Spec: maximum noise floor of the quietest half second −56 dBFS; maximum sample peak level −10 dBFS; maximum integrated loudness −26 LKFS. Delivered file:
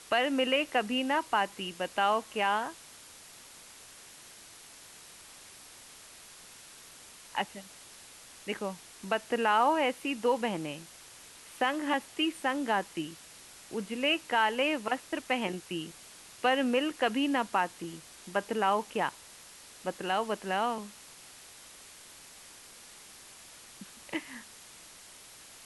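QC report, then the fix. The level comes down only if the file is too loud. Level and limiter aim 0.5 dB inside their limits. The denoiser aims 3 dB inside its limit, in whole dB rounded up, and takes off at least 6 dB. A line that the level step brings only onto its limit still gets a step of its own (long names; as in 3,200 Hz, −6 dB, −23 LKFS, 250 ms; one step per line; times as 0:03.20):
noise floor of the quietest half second −52 dBFS: out of spec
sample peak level −14.0 dBFS: in spec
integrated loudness −31.0 LKFS: in spec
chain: broadband denoise 7 dB, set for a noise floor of −52 dBFS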